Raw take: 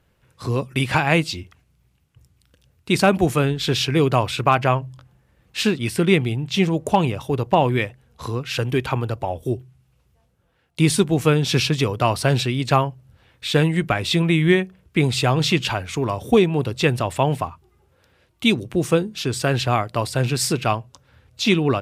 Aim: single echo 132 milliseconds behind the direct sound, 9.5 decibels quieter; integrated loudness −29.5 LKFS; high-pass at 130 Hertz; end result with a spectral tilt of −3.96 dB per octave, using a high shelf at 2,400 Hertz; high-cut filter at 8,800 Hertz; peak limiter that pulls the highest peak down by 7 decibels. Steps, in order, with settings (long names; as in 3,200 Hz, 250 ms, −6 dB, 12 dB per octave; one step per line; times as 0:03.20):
high-pass filter 130 Hz
low-pass filter 8,800 Hz
high-shelf EQ 2,400 Hz +7.5 dB
brickwall limiter −6.5 dBFS
single-tap delay 132 ms −9.5 dB
level −9 dB